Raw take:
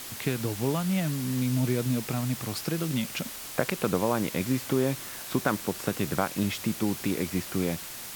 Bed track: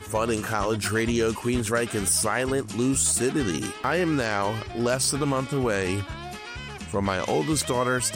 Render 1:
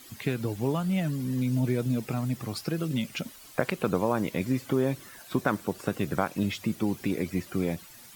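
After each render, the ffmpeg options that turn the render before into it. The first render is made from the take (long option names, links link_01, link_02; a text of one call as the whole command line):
ffmpeg -i in.wav -af "afftdn=noise_reduction=13:noise_floor=-40" out.wav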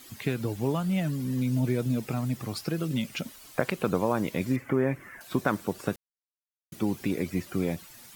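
ffmpeg -i in.wav -filter_complex "[0:a]asettb=1/sr,asplit=3[link_01][link_02][link_03];[link_01]atrim=end=4.564[link_04];[link_02]atrim=start=4.56:end=5.21,asetpts=PTS-STARTPTS,afade=type=in:duration=0.004:curve=qsin,afade=type=out:start_time=0.646:duration=0.004:curve=qsin,highshelf=frequency=2800:width_type=q:width=3:gain=-10.5[link_05];[link_03]atrim=start=5.206[link_06];[link_04][link_05]acrossfade=duration=0.004:curve1=hsin:curve2=qsin[link_07];[link_07][link_06]acrossfade=duration=0.004:curve1=qsin:curve2=hsin,asplit=3[link_08][link_09][link_10];[link_08]atrim=end=5.96,asetpts=PTS-STARTPTS,afade=type=out:start_time=5.956:duration=0.004:curve=hsin[link_11];[link_09]atrim=start=5.96:end=6.72,asetpts=PTS-STARTPTS,volume=0[link_12];[link_10]atrim=start=6.72,asetpts=PTS-STARTPTS,afade=type=in:duration=0.004:curve=hsin[link_13];[link_11][link_12][link_13]concat=n=3:v=0:a=1" out.wav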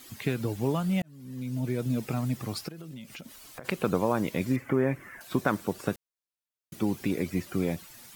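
ffmpeg -i in.wav -filter_complex "[0:a]asplit=3[link_01][link_02][link_03];[link_01]afade=type=out:start_time=2.67:duration=0.02[link_04];[link_02]acompressor=threshold=-40dB:ratio=6:attack=3.2:release=140:knee=1:detection=peak,afade=type=in:start_time=2.67:duration=0.02,afade=type=out:start_time=3.64:duration=0.02[link_05];[link_03]afade=type=in:start_time=3.64:duration=0.02[link_06];[link_04][link_05][link_06]amix=inputs=3:normalize=0,asplit=2[link_07][link_08];[link_07]atrim=end=1.02,asetpts=PTS-STARTPTS,afade=type=out:start_time=1.016:duration=0.004:curve=hsin[link_09];[link_08]atrim=start=1.02,asetpts=PTS-STARTPTS,afade=type=in:duration=1.02[link_10];[link_09][link_10]concat=n=2:v=0:a=1" out.wav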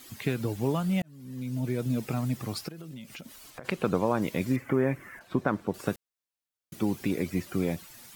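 ffmpeg -i in.wav -filter_complex "[0:a]asettb=1/sr,asplit=3[link_01][link_02][link_03];[link_01]atrim=end=3.504[link_04];[link_02]atrim=start=3.5:end=4.22,asetpts=PTS-STARTPTS,afade=type=in:duration=0.004:curve=qsin,afade=type=out:start_time=0.716:duration=0.004:curve=qsin,highshelf=frequency=9300:gain=-9.5[link_05];[link_03]atrim=start=4.216[link_06];[link_04][link_05]acrossfade=duration=0.004:curve1=hsin:curve2=qsin[link_07];[link_07][link_06]acrossfade=duration=0.004:curve1=qsin:curve2=hsin,asettb=1/sr,asplit=3[link_08][link_09][link_10];[link_08]atrim=end=5.194[link_11];[link_09]atrim=start=5.19:end=5.74,asetpts=PTS-STARTPTS,afade=type=in:duration=0.004:curve=qsin,afade=type=out:start_time=0.546:duration=0.004:curve=qsin,lowpass=frequency=1500:poles=1[link_12];[link_10]atrim=start=5.736[link_13];[link_11][link_12]acrossfade=duration=0.004:curve1=hsin:curve2=qsin[link_14];[link_14][link_13]acrossfade=duration=0.004:curve1=qsin:curve2=hsin" out.wav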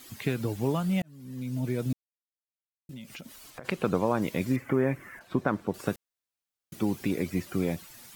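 ffmpeg -i in.wav -filter_complex "[0:a]asplit=3[link_01][link_02][link_03];[link_01]atrim=end=1.93,asetpts=PTS-STARTPTS,afade=type=out:start_time=1.926:duration=0.004:curve=hsin[link_04];[link_02]atrim=start=1.93:end=2.89,asetpts=PTS-STARTPTS,volume=0[link_05];[link_03]atrim=start=2.89,asetpts=PTS-STARTPTS,afade=type=in:duration=0.004:curve=hsin[link_06];[link_04][link_05][link_06]concat=n=3:v=0:a=1" out.wav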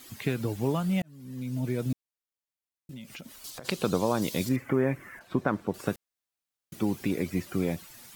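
ffmpeg -i in.wav -filter_complex "[0:a]asettb=1/sr,asplit=3[link_01][link_02][link_03];[link_01]atrim=end=3.444[link_04];[link_02]atrim=start=3.44:end=4.49,asetpts=PTS-STARTPTS,afade=type=in:duration=0.004:curve=qsin,afade=type=out:start_time=1.046:duration=0.004:curve=qsin,highshelf=frequency=3000:width_type=q:width=1.5:gain=9[link_05];[link_03]atrim=start=4.486[link_06];[link_04][link_05]acrossfade=duration=0.004:curve1=hsin:curve2=qsin[link_07];[link_07][link_06]acrossfade=duration=0.004:curve1=qsin:curve2=hsin" out.wav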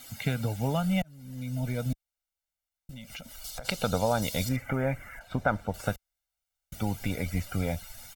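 ffmpeg -i in.wav -af "asubboost=boost=9:cutoff=53,aecho=1:1:1.4:0.76" out.wav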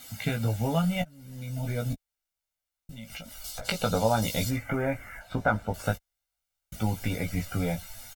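ffmpeg -i in.wav -af "aecho=1:1:18|29:0.631|0.133" out.wav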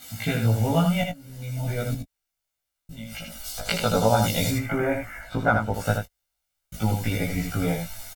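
ffmpeg -i in.wav -filter_complex "[0:a]asplit=2[link_01][link_02];[link_02]adelay=18,volume=-2dB[link_03];[link_01][link_03]amix=inputs=2:normalize=0,aecho=1:1:79:0.531" out.wav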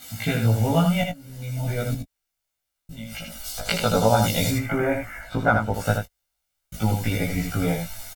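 ffmpeg -i in.wav -af "volume=1.5dB" out.wav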